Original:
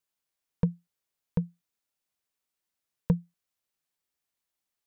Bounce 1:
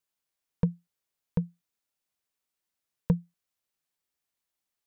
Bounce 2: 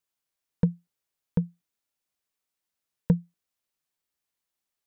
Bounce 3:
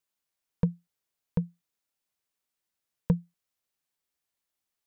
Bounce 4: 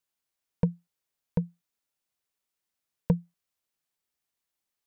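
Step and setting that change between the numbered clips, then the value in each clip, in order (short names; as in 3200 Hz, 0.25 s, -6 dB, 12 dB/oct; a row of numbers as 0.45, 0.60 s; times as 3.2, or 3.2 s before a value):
dynamic EQ, frequency: 10000, 280, 3000, 730 Hz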